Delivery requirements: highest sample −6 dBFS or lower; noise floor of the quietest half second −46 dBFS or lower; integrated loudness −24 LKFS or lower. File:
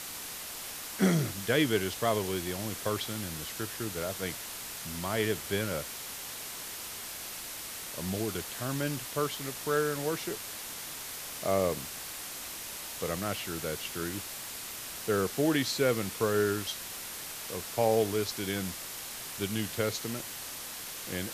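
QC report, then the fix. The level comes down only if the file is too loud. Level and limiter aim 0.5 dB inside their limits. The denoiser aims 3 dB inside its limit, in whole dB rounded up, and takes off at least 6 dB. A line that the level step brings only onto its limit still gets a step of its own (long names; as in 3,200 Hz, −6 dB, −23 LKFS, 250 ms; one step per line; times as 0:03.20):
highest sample −13.5 dBFS: in spec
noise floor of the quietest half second −41 dBFS: out of spec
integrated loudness −32.5 LKFS: in spec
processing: broadband denoise 8 dB, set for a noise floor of −41 dBFS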